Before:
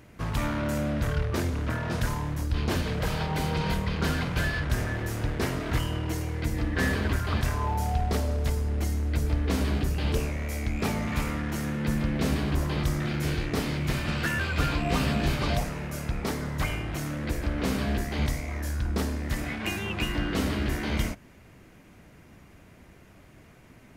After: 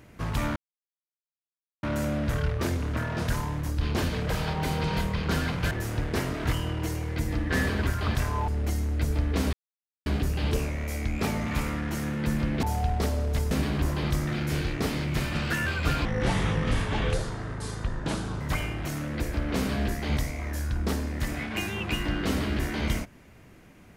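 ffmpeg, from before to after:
-filter_complex "[0:a]asplit=9[a][b][c][d][e][f][g][h][i];[a]atrim=end=0.56,asetpts=PTS-STARTPTS,afade=t=out:st=0.556:d=0.004:c=hsin,apad=pad_dur=1.27[j];[b]atrim=start=0.56:end=4.442,asetpts=PTS-STARTPTS,afade=t=in:d=0.004:c=hsin[k];[c]atrim=start=4.968:end=7.742[l];[d]atrim=start=8.618:end=9.67,asetpts=PTS-STARTPTS,afade=t=out:st=1.048:d=0.004:c=hsin,apad=pad_dur=0.53[m];[e]atrim=start=9.67:end=12.242,asetpts=PTS-STARTPTS,afade=t=in:d=0.004:c=hsin[n];[f]atrim=start=7.738:end=8.622[o];[g]atrim=start=12.238:end=14.784[p];[h]atrim=start=14.78:end=16.5,asetpts=PTS-STARTPTS,asetrate=32193,aresample=44100[q];[i]atrim=start=16.496[r];[j][k]concat=n=2:v=0:a=1[s];[s][l]acrossfade=d=0.004:c1=hsin:c2=hsin[t];[m][n]concat=n=2:v=0:a=1[u];[t][u]acrossfade=d=0.004:c1=hsin:c2=hsin[v];[v][o]acrossfade=d=0.004:c1=hsin:c2=hsin[w];[w][p]acrossfade=d=0.004:c1=hsin:c2=hsin[x];[x][q]acrossfade=d=0.004:c1=hsin:c2=hsin[y];[y][r]acrossfade=d=0.004:c1=hsin:c2=hsin"

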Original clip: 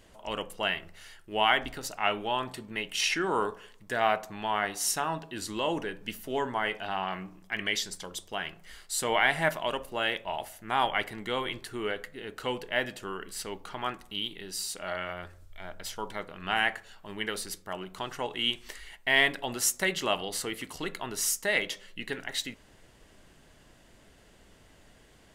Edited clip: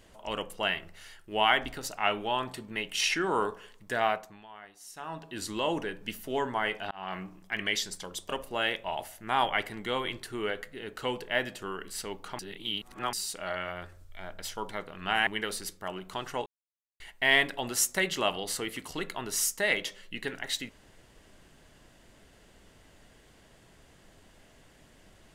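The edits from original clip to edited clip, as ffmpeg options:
-filter_complex "[0:a]asplit=10[a][b][c][d][e][f][g][h][i][j];[a]atrim=end=4.46,asetpts=PTS-STARTPTS,afade=t=out:st=3.97:d=0.49:silence=0.105925[k];[b]atrim=start=4.46:end=4.92,asetpts=PTS-STARTPTS,volume=-19.5dB[l];[c]atrim=start=4.92:end=6.91,asetpts=PTS-STARTPTS,afade=t=in:d=0.49:silence=0.105925,afade=t=out:st=1.986:d=0.004:c=hsin[m];[d]atrim=start=6.91:end=8.292,asetpts=PTS-STARTPTS,afade=t=in:d=0.26[n];[e]atrim=start=9.698:end=13.802[o];[f]atrim=start=13.798:end=14.542,asetpts=PTS-STARTPTS,areverse[p];[g]atrim=start=14.538:end=16.682[q];[h]atrim=start=17.118:end=18.31,asetpts=PTS-STARTPTS,afade=t=out:st=1.188:d=0.004:c=hsin[r];[i]atrim=start=18.31:end=18.85,asetpts=PTS-STARTPTS,volume=0[s];[j]atrim=start=18.85,asetpts=PTS-STARTPTS,afade=t=in:d=0.004:c=hsin[t];[k][l][m][n]concat=n=4:v=0:a=1[u];[u][o]acrossfade=d=0.004:c1=hsin:c2=hsin[v];[v][p]acrossfade=d=0.004:c1=hsin:c2=hsin[w];[w][q]acrossfade=d=0.004:c1=hsin:c2=hsin[x];[r][s][t]concat=n=3:v=0:a=1[y];[x][y]acrossfade=d=0.004:c1=hsin:c2=hsin"

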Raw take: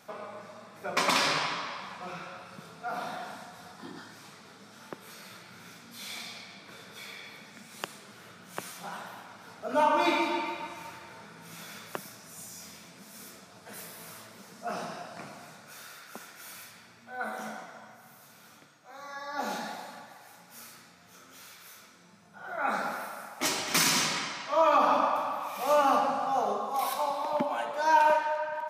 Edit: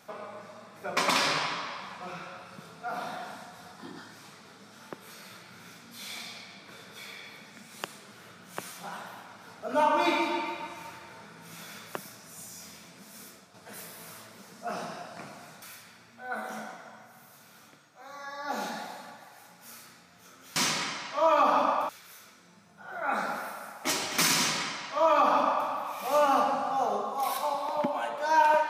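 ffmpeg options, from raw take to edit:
-filter_complex "[0:a]asplit=5[a][b][c][d][e];[a]atrim=end=13.54,asetpts=PTS-STARTPTS,afade=t=out:st=13.19:d=0.35:silence=0.501187[f];[b]atrim=start=13.54:end=15.622,asetpts=PTS-STARTPTS,afade=t=in:d=0.004:c=hsin:silence=0.501187[g];[c]atrim=start=16.508:end=21.452[h];[d]atrim=start=23.908:end=25.242[i];[e]atrim=start=21.448[j];[f][g]concat=n=2:v=0:a=1[k];[k][h]acrossfade=d=0.004:c1=hsin:c2=hsin[l];[l][i]acrossfade=d=0.004:c1=hsin:c2=hsin[m];[m][j]acrossfade=d=0.004:c1=hsin:c2=hsin"

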